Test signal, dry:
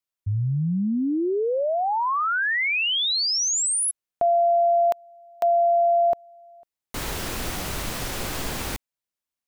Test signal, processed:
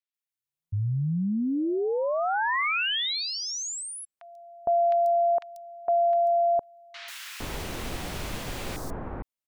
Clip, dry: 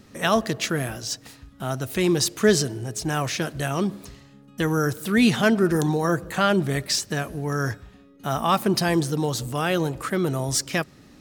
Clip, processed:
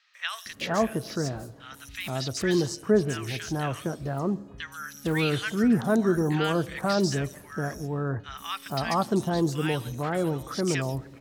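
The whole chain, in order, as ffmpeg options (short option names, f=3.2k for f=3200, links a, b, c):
-filter_complex "[0:a]acrossover=split=6300[a][b];[b]acompressor=threshold=-41dB:ratio=4:attack=1:release=60[c];[a][c]amix=inputs=2:normalize=0,acrossover=split=1400|5000[d][e][f];[f]adelay=140[g];[d]adelay=460[h];[h][e][g]amix=inputs=3:normalize=0,volume=-3dB"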